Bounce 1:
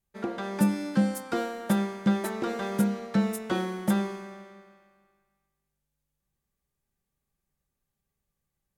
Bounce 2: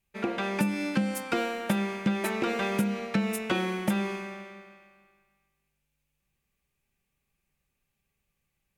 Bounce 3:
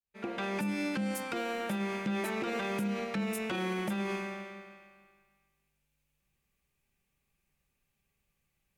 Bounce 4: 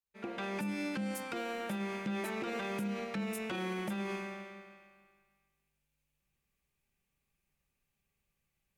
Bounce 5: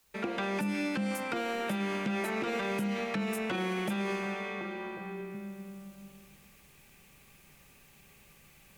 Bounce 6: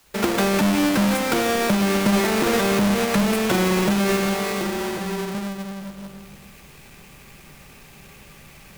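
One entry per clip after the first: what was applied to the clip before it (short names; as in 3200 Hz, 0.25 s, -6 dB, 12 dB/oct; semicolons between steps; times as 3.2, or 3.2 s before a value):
bell 2500 Hz +12.5 dB 0.55 oct; compressor 10:1, threshold -25 dBFS, peak gain reduction 8 dB; gain +2.5 dB
opening faded in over 0.63 s; limiter -25.5 dBFS, peak gain reduction 11.5 dB
short-mantissa float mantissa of 8-bit; gain -3.5 dB
delay with a stepping band-pass 0.365 s, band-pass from 2700 Hz, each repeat -1.4 oct, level -7.5 dB; three-band squash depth 70%; gain +4.5 dB
half-waves squared off; gain +8.5 dB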